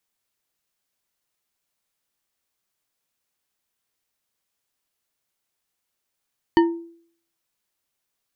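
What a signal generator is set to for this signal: glass hit bar, lowest mode 336 Hz, decay 0.57 s, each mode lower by 5.5 dB, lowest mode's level -10 dB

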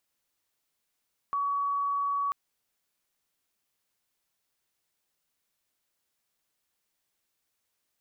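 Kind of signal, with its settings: tone sine 1.13 kHz -26 dBFS 0.99 s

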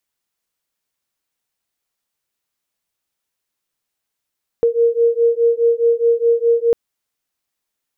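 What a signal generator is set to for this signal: beating tones 464 Hz, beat 4.8 Hz, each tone -15 dBFS 2.10 s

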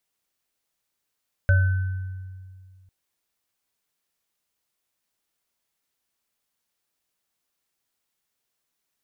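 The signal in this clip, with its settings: sine partials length 1.40 s, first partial 93.6 Hz, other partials 573/1520 Hz, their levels -13.5/-9 dB, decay 2.17 s, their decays 0.39/1.22 s, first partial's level -13.5 dB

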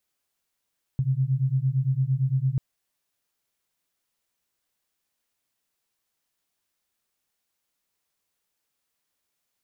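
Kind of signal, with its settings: beating tones 128 Hz, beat 8.8 Hz, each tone -24 dBFS 1.59 s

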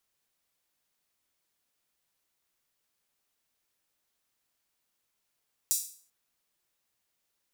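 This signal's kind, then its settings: open hi-hat length 0.39 s, high-pass 6.6 kHz, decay 0.46 s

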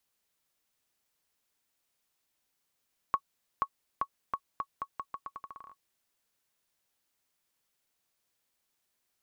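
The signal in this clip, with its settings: bouncing ball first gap 0.48 s, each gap 0.82, 1.11 kHz, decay 64 ms -15.5 dBFS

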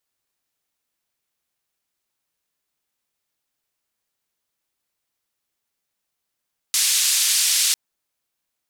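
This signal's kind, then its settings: noise band 3.2–9.5 kHz, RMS -19 dBFS 1.00 s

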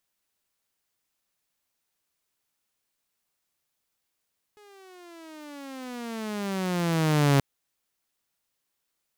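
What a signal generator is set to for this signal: gliding synth tone saw, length 2.83 s, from 422 Hz, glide -19.5 st, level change +34 dB, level -14.5 dB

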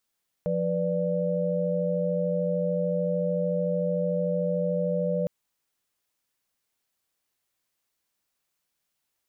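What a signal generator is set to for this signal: chord F3/B4/D5 sine, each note -28 dBFS 4.81 s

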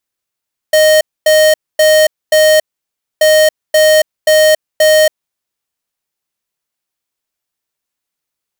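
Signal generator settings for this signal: beep pattern square 620 Hz, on 0.28 s, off 0.25 s, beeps 4, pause 0.61 s, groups 2, -7.5 dBFS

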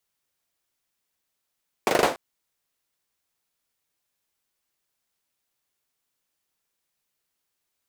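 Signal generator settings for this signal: hand clap length 0.29 s, bursts 5, apart 40 ms, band 550 Hz, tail 0.32 s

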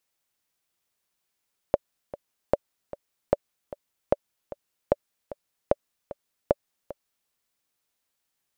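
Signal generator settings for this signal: metronome 151 bpm, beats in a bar 2, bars 7, 575 Hz, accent 16.5 dB -5.5 dBFS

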